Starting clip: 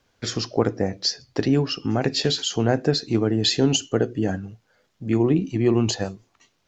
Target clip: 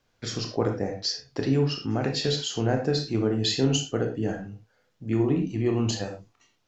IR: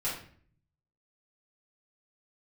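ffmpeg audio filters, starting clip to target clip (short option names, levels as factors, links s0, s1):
-filter_complex "[0:a]asplit=2[s0][s1];[1:a]atrim=start_sample=2205,atrim=end_sample=4410,adelay=23[s2];[s1][s2]afir=irnorm=-1:irlink=0,volume=0.398[s3];[s0][s3]amix=inputs=2:normalize=0,volume=0.501"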